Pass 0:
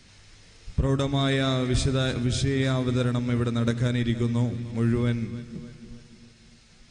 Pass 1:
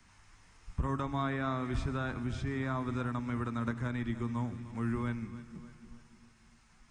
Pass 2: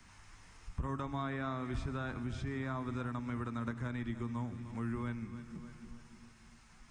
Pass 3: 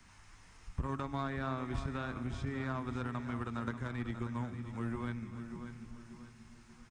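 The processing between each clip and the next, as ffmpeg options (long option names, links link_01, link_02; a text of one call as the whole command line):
ffmpeg -i in.wav -filter_complex "[0:a]acrossover=split=4900[link_01][link_02];[link_02]acompressor=threshold=-53dB:ratio=4:attack=1:release=60[link_03];[link_01][link_03]amix=inputs=2:normalize=0,equalizer=frequency=125:width_type=o:width=1:gain=-5,equalizer=frequency=500:width_type=o:width=1:gain=-10,equalizer=frequency=1000:width_type=o:width=1:gain=10,equalizer=frequency=4000:width_type=o:width=1:gain=-10,acrossover=split=250|600|1800[link_04][link_05][link_06][link_07];[link_07]alimiter=level_in=9dB:limit=-24dB:level=0:latency=1:release=325,volume=-9dB[link_08];[link_04][link_05][link_06][link_08]amix=inputs=4:normalize=0,volume=-6.5dB" out.wav
ffmpeg -i in.wav -af "acompressor=threshold=-50dB:ratio=1.5,volume=3dB" out.wav
ffmpeg -i in.wav -filter_complex "[0:a]asplit=2[link_01][link_02];[link_02]acrusher=bits=4:mix=0:aa=0.5,volume=-9.5dB[link_03];[link_01][link_03]amix=inputs=2:normalize=0,aecho=1:1:587|1174|1761|2348:0.282|0.118|0.0497|0.0209,volume=-1dB" out.wav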